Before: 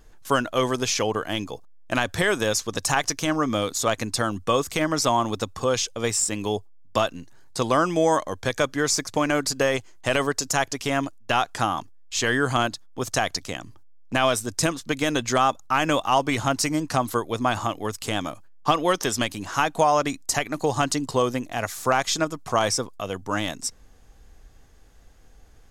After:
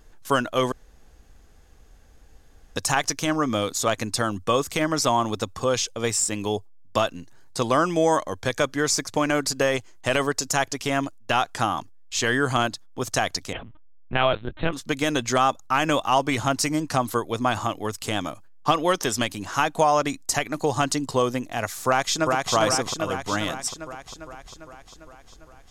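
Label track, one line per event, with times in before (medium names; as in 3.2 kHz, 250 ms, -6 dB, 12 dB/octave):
0.720000	2.760000	room tone
13.530000	14.730000	LPC vocoder at 8 kHz pitch kept
21.860000	22.530000	echo throw 400 ms, feedback 65%, level -2.5 dB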